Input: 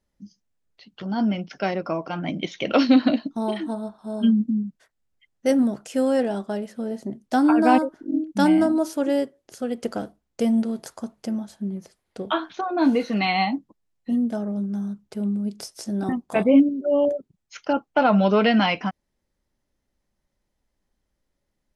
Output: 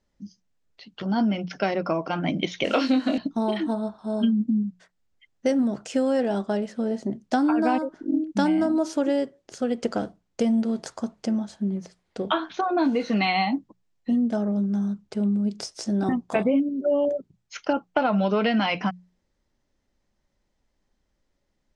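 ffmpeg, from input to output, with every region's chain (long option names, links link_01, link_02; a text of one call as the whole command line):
ffmpeg -i in.wav -filter_complex "[0:a]asettb=1/sr,asplit=3[link_01][link_02][link_03];[link_01]atrim=end=2.644[link_04];[link_02]atrim=start=2.64:end=3.18,asetpts=PTS-STARTPTS,afade=type=in:duration=0.004:curve=qsin,afade=type=out:start_time=0.536:duration=0.004:curve=qsin,highpass=230,acrusher=bits=8:dc=4:mix=0:aa=0.000001,asplit=2[link_05][link_06];[link_06]adelay=23,volume=-4dB[link_07];[link_05][link_07]amix=inputs=2:normalize=0,atrim=end_sample=23814[link_08];[link_03]atrim=start=3.176[link_09];[link_04][link_08]acrossfade=duration=0.004:curve1=hsin:curve2=qsin[link_10];[link_10][link_09]acrossfade=duration=0.004:curve1=qsin:curve2=hsin,lowpass=frequency=7800:width=0.5412,lowpass=frequency=7800:width=1.3066,bandreject=frequency=60:width_type=h:width=6,bandreject=frequency=120:width_type=h:width=6,bandreject=frequency=180:width_type=h:width=6,acompressor=threshold=-22dB:ratio=6,volume=3dB" out.wav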